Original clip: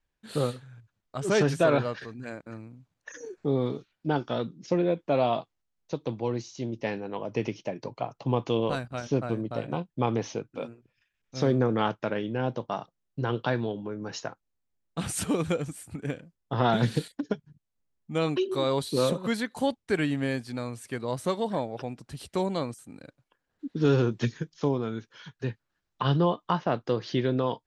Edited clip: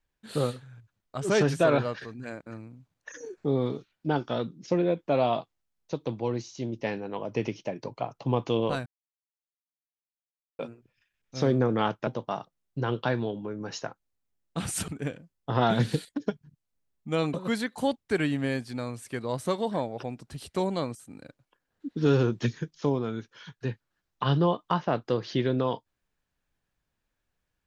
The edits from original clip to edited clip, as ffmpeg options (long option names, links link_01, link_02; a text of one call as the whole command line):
ffmpeg -i in.wav -filter_complex "[0:a]asplit=6[link_01][link_02][link_03][link_04][link_05][link_06];[link_01]atrim=end=8.86,asetpts=PTS-STARTPTS,afade=type=out:start_time=8.856:duration=0.004:curve=hsin[link_07];[link_02]atrim=start=8.86:end=10.59,asetpts=PTS-STARTPTS,volume=0[link_08];[link_03]atrim=start=10.59:end=12.072,asetpts=PTS-STARTPTS,afade=type=in:duration=0.004:curve=hsin[link_09];[link_04]atrim=start=12.478:end=15.292[link_10];[link_05]atrim=start=15.908:end=18.372[link_11];[link_06]atrim=start=19.128[link_12];[link_07][link_08][link_09]concat=n=3:v=0:a=1[link_13];[link_13][link_10]acrossfade=duration=0.004:curve1=hsin:curve2=hsin[link_14];[link_14][link_11]acrossfade=duration=0.004:curve1=hsin:curve2=hsin[link_15];[link_15][link_12]acrossfade=duration=0.004:curve1=hsin:curve2=hsin" out.wav